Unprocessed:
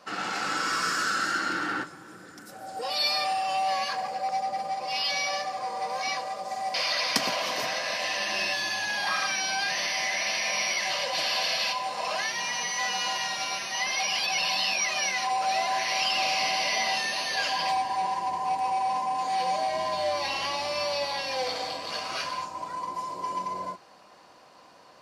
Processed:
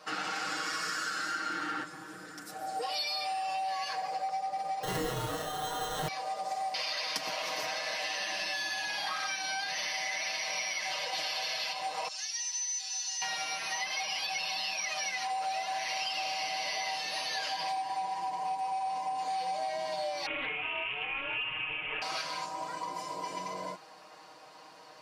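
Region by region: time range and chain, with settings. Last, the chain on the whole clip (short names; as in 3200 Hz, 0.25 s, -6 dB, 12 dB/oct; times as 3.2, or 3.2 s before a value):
4.83–6.08 weighting filter D + sample-rate reducer 2400 Hz + doubler 32 ms -3.5 dB
12.08–13.22 band-pass 6400 Hz, Q 2.5 + comb 5.3 ms, depth 68%
20.26–22.02 inverted band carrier 3300 Hz + upward compressor, threshold -38 dBFS + Doppler distortion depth 0.31 ms
whole clip: low shelf 350 Hz -6.5 dB; comb 6.4 ms, depth 77%; compressor, threshold -32 dBFS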